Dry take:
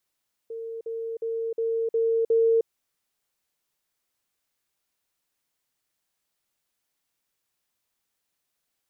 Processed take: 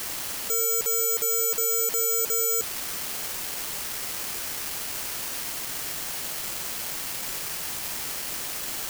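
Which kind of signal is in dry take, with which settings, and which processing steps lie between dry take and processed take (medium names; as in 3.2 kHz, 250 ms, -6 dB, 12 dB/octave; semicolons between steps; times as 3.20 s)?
level ladder 455 Hz -32 dBFS, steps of 3 dB, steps 6, 0.31 s 0.05 s
one-bit comparator; careless resampling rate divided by 6×, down filtered, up zero stuff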